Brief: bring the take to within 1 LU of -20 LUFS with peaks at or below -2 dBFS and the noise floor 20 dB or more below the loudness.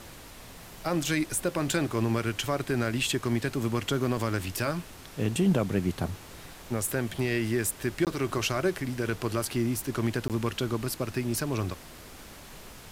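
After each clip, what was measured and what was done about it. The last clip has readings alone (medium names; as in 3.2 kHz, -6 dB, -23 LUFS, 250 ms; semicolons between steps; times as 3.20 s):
dropouts 2; longest dropout 18 ms; noise floor -47 dBFS; noise floor target -50 dBFS; loudness -29.5 LUFS; peak level -13.5 dBFS; loudness target -20.0 LUFS
-> interpolate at 8.05/10.28 s, 18 ms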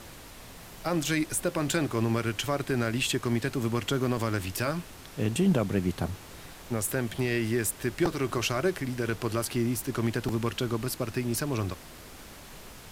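dropouts 0; noise floor -47 dBFS; noise floor target -50 dBFS
-> noise print and reduce 6 dB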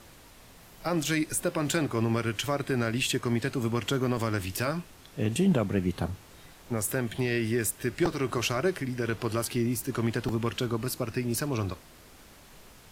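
noise floor -53 dBFS; loudness -29.5 LUFS; peak level -13.5 dBFS; loudness target -20.0 LUFS
-> trim +9.5 dB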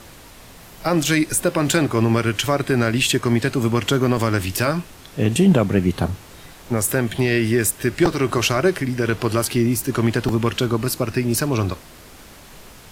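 loudness -20.0 LUFS; peak level -4.0 dBFS; noise floor -43 dBFS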